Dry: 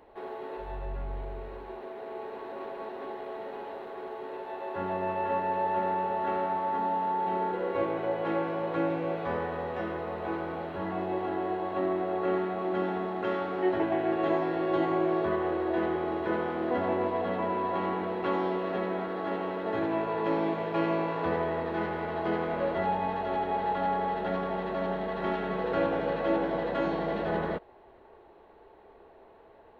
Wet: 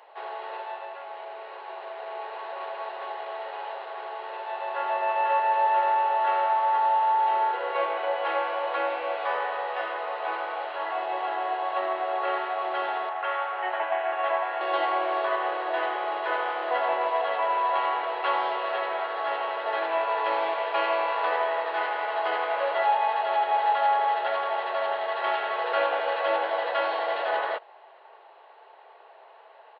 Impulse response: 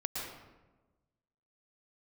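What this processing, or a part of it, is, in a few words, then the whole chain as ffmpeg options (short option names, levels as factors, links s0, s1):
musical greeting card: -filter_complex "[0:a]asettb=1/sr,asplit=3[s0][s1][s2];[s0]atrim=end=13.094[s3];[s1]atrim=start=13.09:end=14.61,asetpts=PTS-STARTPTS,afade=t=in:d=0.004:c=qsin,afade=t=out:st=1.516:d=0.004:c=qsin,acrossover=split=530 3200:gain=0.251 1 0.0794[s4][s5][s6];[s4][s5][s6]amix=inputs=3:normalize=0[s7];[s2]atrim=start=14.606[s8];[s3][s7]acrossfade=d=0.004:c1=hsin:c2=qsin[s9];[s9][s8]acrossfade=d=0.004:c1=qsin:c2=hsin,aresample=11025,aresample=44100,highpass=f=630:w=0.5412,highpass=f=630:w=1.3066,equalizer=f=2900:t=o:w=0.26:g=5,volume=2.37"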